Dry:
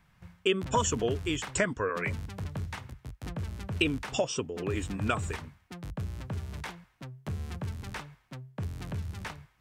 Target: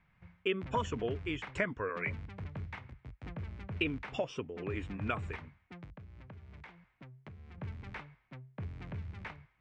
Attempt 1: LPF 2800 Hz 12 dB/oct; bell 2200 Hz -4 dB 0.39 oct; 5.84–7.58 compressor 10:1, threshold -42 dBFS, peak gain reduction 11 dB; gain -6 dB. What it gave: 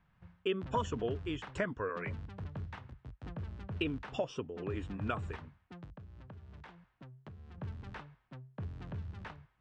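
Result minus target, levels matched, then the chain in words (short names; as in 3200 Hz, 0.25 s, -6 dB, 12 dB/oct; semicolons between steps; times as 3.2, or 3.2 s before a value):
2000 Hz band -3.5 dB
LPF 2800 Hz 12 dB/oct; bell 2200 Hz +6.5 dB 0.39 oct; 5.84–7.58 compressor 10:1, threshold -42 dBFS, peak gain reduction 11 dB; gain -6 dB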